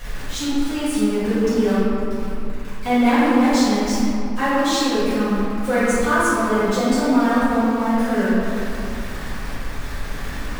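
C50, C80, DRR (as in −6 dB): −4.5 dB, −2.5 dB, −14.5 dB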